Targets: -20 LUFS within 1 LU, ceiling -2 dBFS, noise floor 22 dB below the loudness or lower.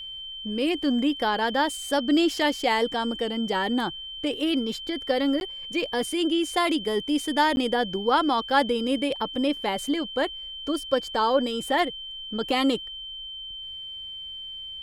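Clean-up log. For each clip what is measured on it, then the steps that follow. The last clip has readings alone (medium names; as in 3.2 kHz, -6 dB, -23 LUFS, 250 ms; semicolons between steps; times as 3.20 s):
dropouts 2; longest dropout 11 ms; steady tone 3.1 kHz; tone level -35 dBFS; loudness -26.0 LUFS; peak level -8.5 dBFS; loudness target -20.0 LUFS
-> interpolate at 5.40/7.56 s, 11 ms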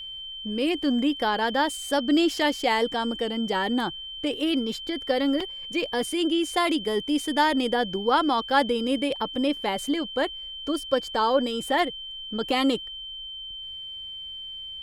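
dropouts 0; steady tone 3.1 kHz; tone level -35 dBFS
-> band-stop 3.1 kHz, Q 30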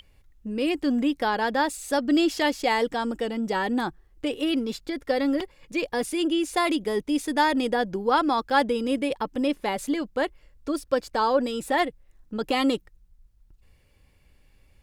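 steady tone not found; loudness -25.5 LUFS; peak level -9.0 dBFS; loudness target -20.0 LUFS
-> trim +5.5 dB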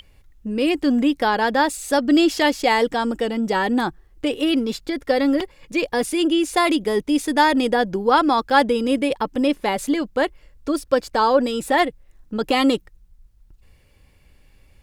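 loudness -20.0 LUFS; peak level -3.5 dBFS; noise floor -55 dBFS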